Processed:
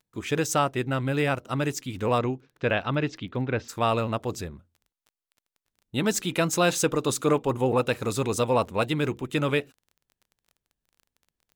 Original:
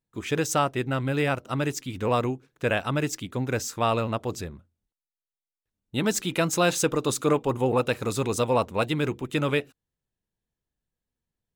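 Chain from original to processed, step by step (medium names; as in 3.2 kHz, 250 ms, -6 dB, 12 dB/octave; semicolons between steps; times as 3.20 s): 2.18–3.68 s: low-pass 6.2 kHz -> 3.4 kHz 24 dB/octave; crackle 18 per s -45 dBFS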